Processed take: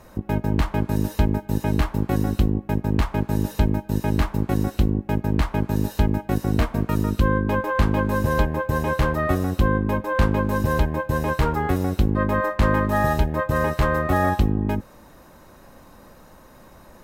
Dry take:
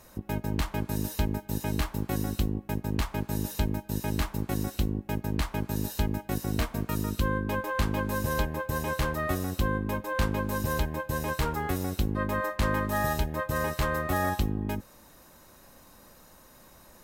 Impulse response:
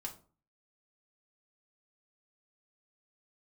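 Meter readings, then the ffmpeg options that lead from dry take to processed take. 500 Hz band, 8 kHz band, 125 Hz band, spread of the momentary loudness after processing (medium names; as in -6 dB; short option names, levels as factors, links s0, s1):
+8.0 dB, -2.0 dB, +8.5 dB, 3 LU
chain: -af "highshelf=f=3000:g=-12,volume=2.66"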